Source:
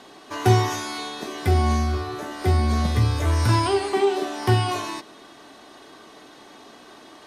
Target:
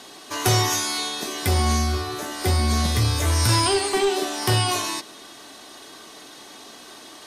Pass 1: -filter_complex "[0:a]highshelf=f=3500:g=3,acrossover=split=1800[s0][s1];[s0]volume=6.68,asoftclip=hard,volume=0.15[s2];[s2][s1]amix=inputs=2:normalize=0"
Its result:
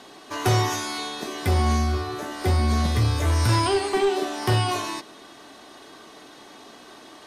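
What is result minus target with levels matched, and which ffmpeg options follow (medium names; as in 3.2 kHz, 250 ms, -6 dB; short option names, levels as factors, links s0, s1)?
8 kHz band -7.0 dB
-filter_complex "[0:a]highshelf=f=3500:g=13.5,acrossover=split=1800[s0][s1];[s0]volume=6.68,asoftclip=hard,volume=0.15[s2];[s2][s1]amix=inputs=2:normalize=0"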